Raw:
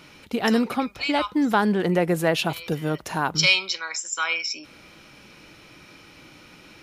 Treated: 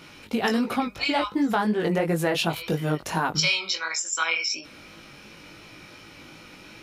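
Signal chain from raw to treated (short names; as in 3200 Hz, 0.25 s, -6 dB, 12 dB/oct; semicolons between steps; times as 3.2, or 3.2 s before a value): chorus 2.8 Hz, delay 18 ms, depth 3 ms; compressor 5:1, threshold -25 dBFS, peak gain reduction 8 dB; gain +5 dB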